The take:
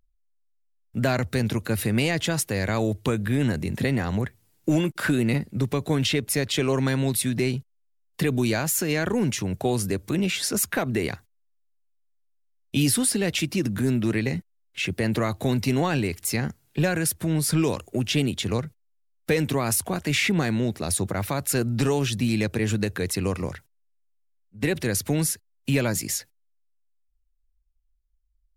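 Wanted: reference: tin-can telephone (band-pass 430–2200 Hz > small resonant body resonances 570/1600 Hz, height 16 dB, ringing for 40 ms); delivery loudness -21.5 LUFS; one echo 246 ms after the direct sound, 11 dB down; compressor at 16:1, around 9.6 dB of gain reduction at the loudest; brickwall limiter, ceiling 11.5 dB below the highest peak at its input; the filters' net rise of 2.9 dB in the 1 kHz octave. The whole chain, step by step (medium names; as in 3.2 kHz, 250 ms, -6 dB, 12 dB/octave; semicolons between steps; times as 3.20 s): peaking EQ 1 kHz +4.5 dB; compression 16:1, threshold -27 dBFS; peak limiter -27 dBFS; band-pass 430–2200 Hz; delay 246 ms -11 dB; small resonant body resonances 570/1600 Hz, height 16 dB, ringing for 40 ms; trim +15.5 dB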